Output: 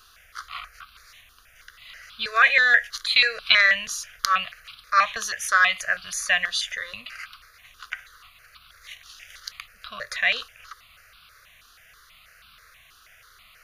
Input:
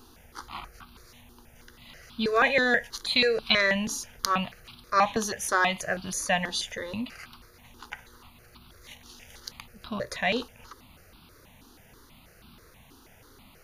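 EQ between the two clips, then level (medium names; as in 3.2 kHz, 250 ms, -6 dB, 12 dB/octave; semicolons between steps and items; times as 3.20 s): Butterworth band-stop 890 Hz, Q 2.3; amplifier tone stack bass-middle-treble 10-0-10; peaking EQ 1.3 kHz +14.5 dB 2.9 oct; 0.0 dB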